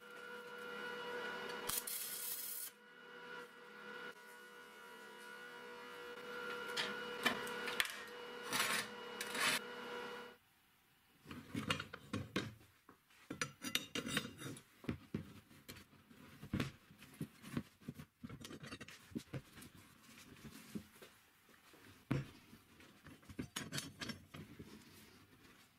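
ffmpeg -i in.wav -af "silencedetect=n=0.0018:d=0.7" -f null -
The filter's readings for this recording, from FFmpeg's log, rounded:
silence_start: 10.35
silence_end: 11.26 | silence_duration: 0.91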